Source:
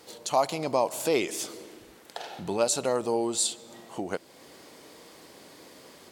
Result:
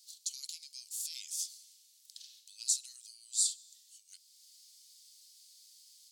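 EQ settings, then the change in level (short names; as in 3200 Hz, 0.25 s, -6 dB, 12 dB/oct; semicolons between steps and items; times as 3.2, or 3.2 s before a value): inverse Chebyshev high-pass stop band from 780 Hz, stop band 80 dB; bell 14000 Hz -5 dB 0.98 oct; 0.0 dB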